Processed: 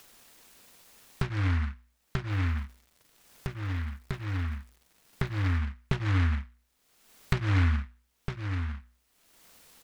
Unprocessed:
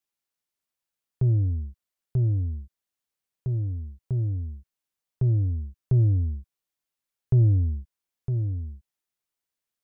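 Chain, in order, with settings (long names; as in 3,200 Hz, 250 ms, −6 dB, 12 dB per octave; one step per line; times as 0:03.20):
mains-hum notches 60/120/180/240/300 Hz
comb filter 4.3 ms, depth 95%
upward compression, threshold −35 dBFS
0:02.29–0:05.57: surface crackle 530 per second −53 dBFS
short delay modulated by noise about 1,500 Hz, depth 0.3 ms
level +2.5 dB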